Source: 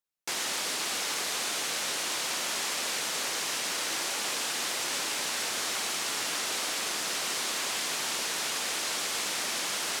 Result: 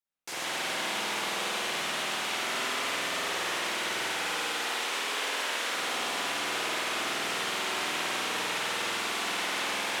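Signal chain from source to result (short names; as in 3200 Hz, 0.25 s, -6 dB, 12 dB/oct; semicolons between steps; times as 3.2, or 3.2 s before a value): 4.38–5.7 HPF 330 Hz 12 dB/oct; spring tank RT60 2.6 s, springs 49 ms, chirp 80 ms, DRR -9.5 dB; gain -6.5 dB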